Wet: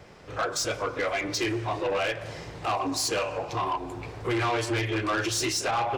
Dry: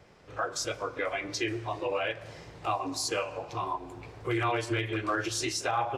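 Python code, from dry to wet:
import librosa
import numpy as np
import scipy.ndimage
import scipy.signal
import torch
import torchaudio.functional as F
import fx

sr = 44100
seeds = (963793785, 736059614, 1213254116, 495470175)

y = 10.0 ** (-30.0 / 20.0) * np.tanh(x / 10.0 ** (-30.0 / 20.0))
y = y * 10.0 ** (7.5 / 20.0)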